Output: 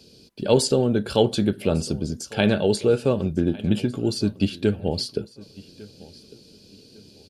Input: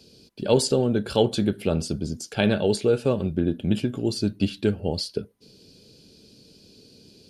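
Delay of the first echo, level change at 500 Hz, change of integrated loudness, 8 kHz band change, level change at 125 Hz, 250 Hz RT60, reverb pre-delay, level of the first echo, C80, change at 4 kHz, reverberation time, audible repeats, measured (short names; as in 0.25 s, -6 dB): 1.152 s, +1.5 dB, +1.5 dB, +1.5 dB, +1.5 dB, none, none, -21.5 dB, none, +1.5 dB, none, 2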